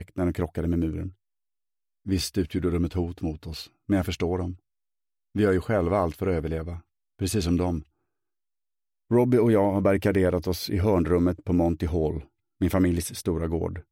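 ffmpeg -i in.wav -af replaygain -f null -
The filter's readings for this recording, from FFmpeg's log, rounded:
track_gain = +6.0 dB
track_peak = 0.230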